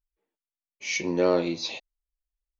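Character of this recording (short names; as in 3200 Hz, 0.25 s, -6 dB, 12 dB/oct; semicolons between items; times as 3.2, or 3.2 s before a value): noise floor -95 dBFS; spectral tilt -4.0 dB/oct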